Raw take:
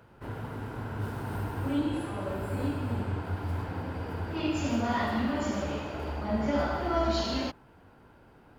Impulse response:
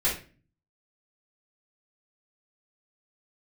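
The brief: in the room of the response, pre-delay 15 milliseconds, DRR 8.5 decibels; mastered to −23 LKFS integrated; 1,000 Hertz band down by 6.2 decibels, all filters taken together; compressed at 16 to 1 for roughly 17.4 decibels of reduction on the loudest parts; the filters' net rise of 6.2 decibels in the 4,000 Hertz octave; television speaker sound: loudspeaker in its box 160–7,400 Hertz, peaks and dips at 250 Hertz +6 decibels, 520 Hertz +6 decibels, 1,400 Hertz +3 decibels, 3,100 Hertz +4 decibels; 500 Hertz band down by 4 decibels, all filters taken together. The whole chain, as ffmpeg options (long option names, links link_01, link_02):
-filter_complex "[0:a]equalizer=frequency=500:width_type=o:gain=-6,equalizer=frequency=1000:width_type=o:gain=-8.5,equalizer=frequency=4000:width_type=o:gain=6,acompressor=threshold=-44dB:ratio=16,asplit=2[link_01][link_02];[1:a]atrim=start_sample=2205,adelay=15[link_03];[link_02][link_03]afir=irnorm=-1:irlink=0,volume=-19dB[link_04];[link_01][link_04]amix=inputs=2:normalize=0,highpass=frequency=160:width=0.5412,highpass=frequency=160:width=1.3066,equalizer=frequency=250:width_type=q:width=4:gain=6,equalizer=frequency=520:width_type=q:width=4:gain=6,equalizer=frequency=1400:width_type=q:width=4:gain=3,equalizer=frequency=3100:width_type=q:width=4:gain=4,lowpass=frequency=7400:width=0.5412,lowpass=frequency=7400:width=1.3066,volume=24.5dB"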